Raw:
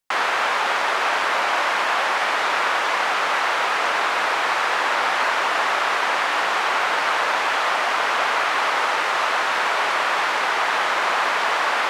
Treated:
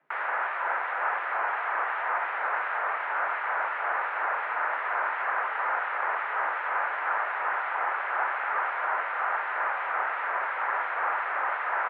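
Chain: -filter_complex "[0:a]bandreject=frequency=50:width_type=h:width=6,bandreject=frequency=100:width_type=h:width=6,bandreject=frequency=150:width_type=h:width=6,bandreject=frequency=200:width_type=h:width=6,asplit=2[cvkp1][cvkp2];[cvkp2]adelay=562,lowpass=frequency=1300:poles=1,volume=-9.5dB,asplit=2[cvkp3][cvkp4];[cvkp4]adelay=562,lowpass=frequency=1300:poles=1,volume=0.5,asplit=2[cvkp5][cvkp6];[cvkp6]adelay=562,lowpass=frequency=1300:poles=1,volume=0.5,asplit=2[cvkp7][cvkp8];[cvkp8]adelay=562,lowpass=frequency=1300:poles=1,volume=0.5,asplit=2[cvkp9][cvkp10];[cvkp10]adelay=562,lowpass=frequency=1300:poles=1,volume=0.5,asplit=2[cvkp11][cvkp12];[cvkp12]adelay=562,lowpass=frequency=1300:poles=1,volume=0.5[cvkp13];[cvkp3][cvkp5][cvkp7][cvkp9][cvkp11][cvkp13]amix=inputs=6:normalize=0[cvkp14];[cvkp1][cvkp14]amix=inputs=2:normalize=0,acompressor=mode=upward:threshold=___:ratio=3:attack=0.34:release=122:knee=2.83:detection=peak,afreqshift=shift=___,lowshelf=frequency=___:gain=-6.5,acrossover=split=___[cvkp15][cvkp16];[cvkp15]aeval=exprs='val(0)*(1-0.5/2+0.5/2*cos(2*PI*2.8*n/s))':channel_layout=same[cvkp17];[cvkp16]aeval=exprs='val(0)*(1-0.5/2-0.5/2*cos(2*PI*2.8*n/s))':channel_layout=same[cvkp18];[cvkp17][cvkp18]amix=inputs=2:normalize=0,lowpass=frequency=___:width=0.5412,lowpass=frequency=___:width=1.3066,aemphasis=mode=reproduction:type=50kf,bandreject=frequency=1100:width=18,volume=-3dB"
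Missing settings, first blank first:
-33dB, 130, 380, 2100, 1900, 1900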